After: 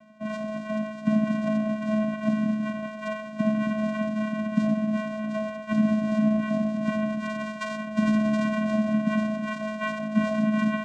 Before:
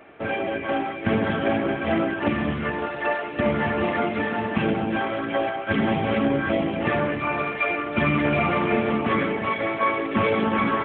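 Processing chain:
channel vocoder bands 4, square 215 Hz
level −1.5 dB

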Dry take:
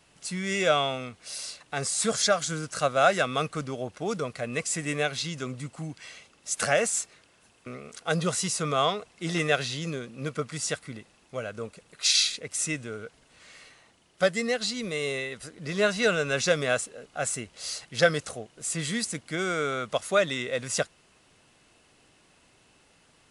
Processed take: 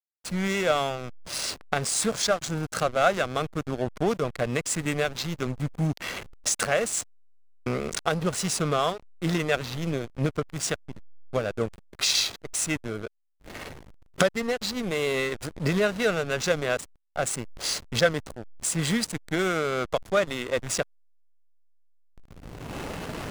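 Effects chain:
camcorder AGC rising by 15 dB per second
slack as between gear wheels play −23.5 dBFS

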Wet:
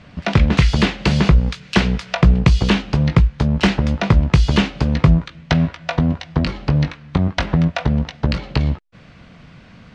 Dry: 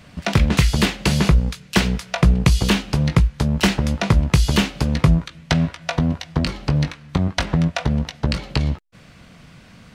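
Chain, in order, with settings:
high-frequency loss of the air 130 metres
0:00.62–0:02.40: one half of a high-frequency compander encoder only
level +2.5 dB

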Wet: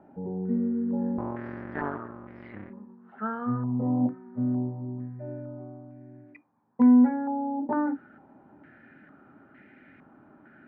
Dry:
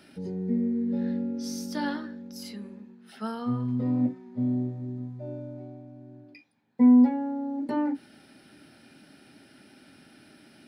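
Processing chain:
0:01.18–0:02.70: sub-harmonics by changed cycles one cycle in 2, muted
high-frequency loss of the air 460 metres
low-pass on a step sequencer 2.2 Hz 850–2,000 Hz

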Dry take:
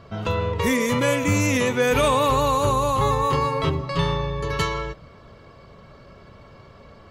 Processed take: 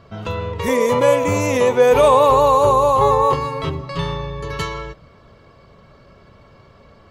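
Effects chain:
0:00.68–0:03.34: flat-topped bell 650 Hz +10 dB
level −1 dB

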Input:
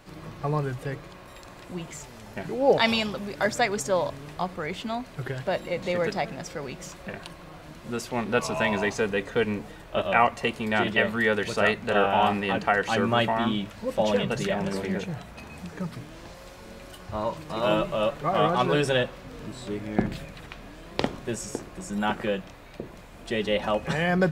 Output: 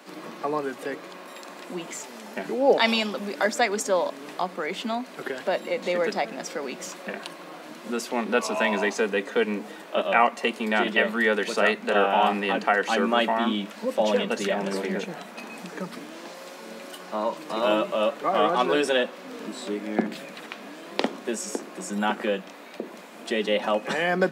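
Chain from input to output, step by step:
Butterworth high-pass 200 Hz 48 dB per octave
in parallel at −2 dB: downward compressor, threshold −35 dBFS, peak gain reduction 19 dB

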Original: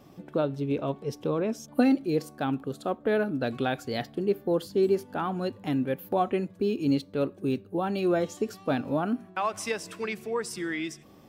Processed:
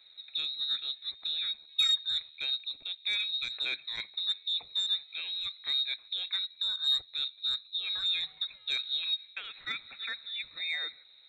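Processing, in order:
drawn EQ curve 320 Hz 0 dB, 1,100 Hz −21 dB, 1,600 Hz +7 dB, 3,100 Hz −5 dB
voice inversion scrambler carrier 4,000 Hz
saturating transformer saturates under 1,800 Hz
level −3.5 dB

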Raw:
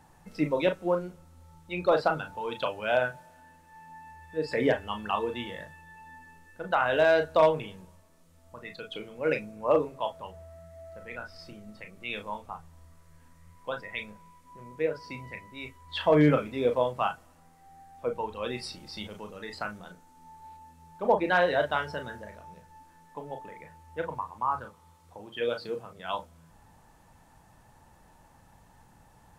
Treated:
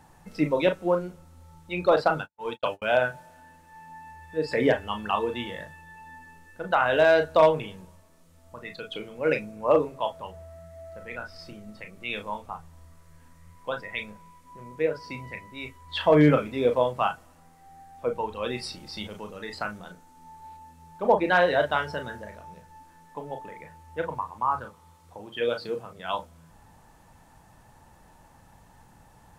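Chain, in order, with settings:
0:01.96–0:02.82: noise gate −33 dBFS, range −55 dB
level +3 dB

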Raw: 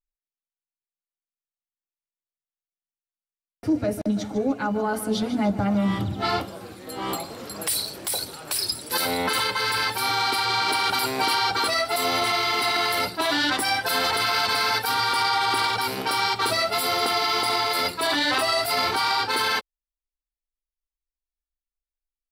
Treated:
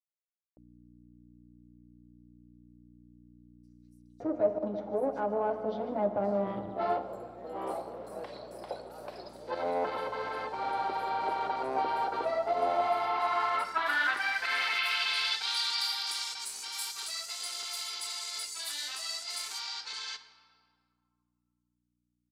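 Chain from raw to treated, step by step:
harmonic generator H 6 −20 dB, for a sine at −11.5 dBFS
on a send at −10 dB: convolution reverb RT60 2.2 s, pre-delay 3 ms
on the sum: mains hum 60 Hz, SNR 11 dB
band-pass filter sweep 600 Hz → 7,100 Hz, 0:12.01–0:15.92
multiband delay without the direct sound highs, lows 570 ms, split 5,800 Hz

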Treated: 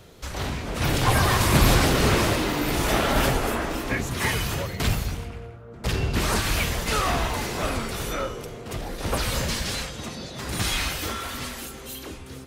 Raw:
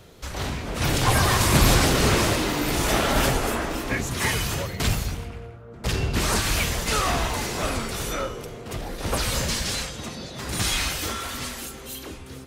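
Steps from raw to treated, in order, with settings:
dynamic equaliser 7,200 Hz, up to −4 dB, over −39 dBFS, Q 0.8

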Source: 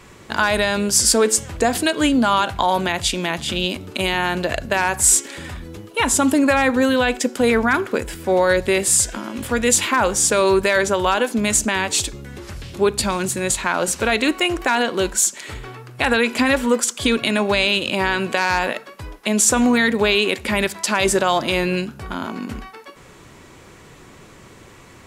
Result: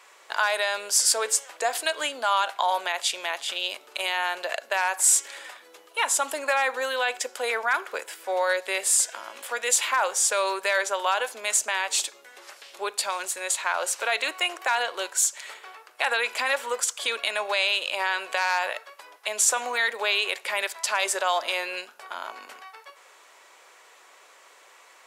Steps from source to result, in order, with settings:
high-pass filter 570 Hz 24 dB per octave
level −5 dB

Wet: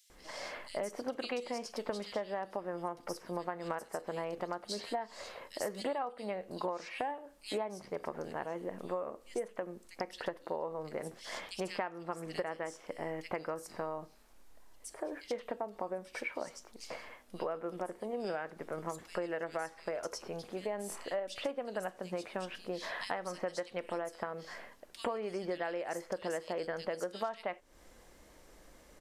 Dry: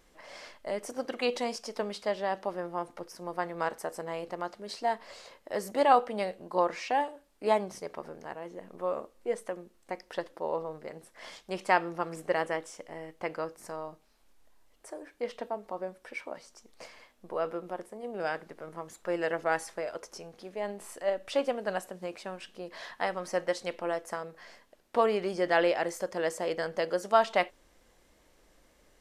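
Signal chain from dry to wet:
multiband delay without the direct sound highs, lows 100 ms, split 3,100 Hz
downward compressor 16 to 1, threshold −38 dBFS, peak gain reduction 22 dB
level +5 dB

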